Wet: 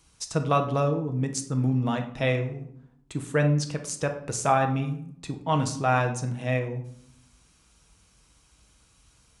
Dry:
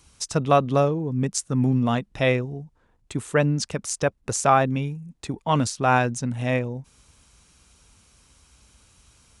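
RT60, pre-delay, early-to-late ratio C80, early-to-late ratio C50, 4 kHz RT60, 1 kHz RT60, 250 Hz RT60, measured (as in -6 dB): 0.70 s, 6 ms, 13.5 dB, 10.0 dB, 0.45 s, 0.70 s, 1.1 s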